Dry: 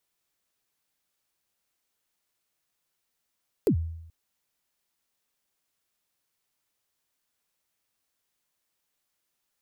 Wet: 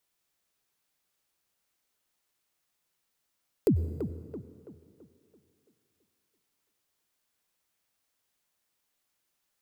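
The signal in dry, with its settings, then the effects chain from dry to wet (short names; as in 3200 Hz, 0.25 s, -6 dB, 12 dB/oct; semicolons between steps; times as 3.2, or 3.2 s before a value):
kick drum length 0.43 s, from 490 Hz, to 82 Hz, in 87 ms, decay 0.83 s, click on, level -16.5 dB
tape echo 0.333 s, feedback 48%, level -7.5 dB, low-pass 2400 Hz; plate-style reverb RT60 2.5 s, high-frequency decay 0.75×, pre-delay 85 ms, DRR 14.5 dB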